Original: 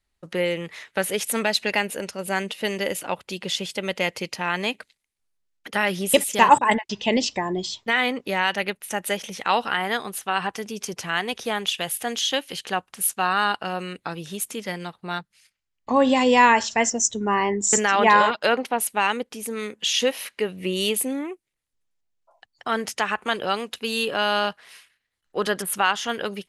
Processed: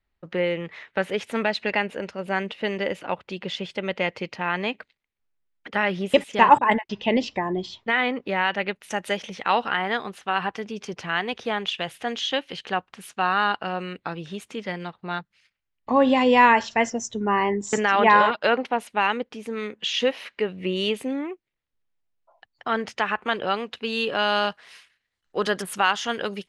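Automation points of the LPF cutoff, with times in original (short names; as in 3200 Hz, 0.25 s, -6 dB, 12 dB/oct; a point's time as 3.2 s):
8.64 s 2800 Hz
8.9 s 6000 Hz
9.46 s 3400 Hz
23.85 s 3400 Hz
24.41 s 7100 Hz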